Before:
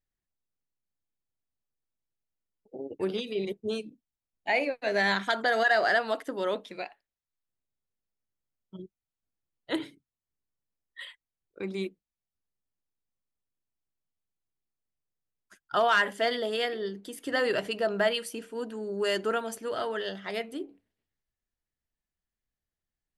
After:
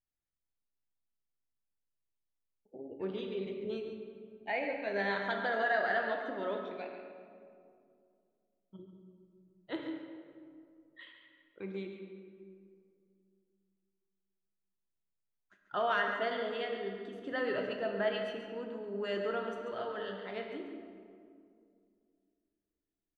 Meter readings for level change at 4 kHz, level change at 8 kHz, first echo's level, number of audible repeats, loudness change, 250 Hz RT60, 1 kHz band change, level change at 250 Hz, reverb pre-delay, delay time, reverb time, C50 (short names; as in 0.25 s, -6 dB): -11.0 dB, under -20 dB, -9.0 dB, 1, -7.0 dB, 3.0 s, -6.0 dB, -5.0 dB, 15 ms, 0.139 s, 2.3 s, 3.5 dB